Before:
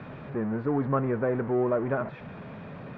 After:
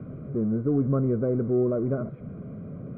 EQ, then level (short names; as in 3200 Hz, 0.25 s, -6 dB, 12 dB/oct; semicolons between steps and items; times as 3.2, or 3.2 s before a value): running mean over 50 samples; air absorption 170 m; +5.5 dB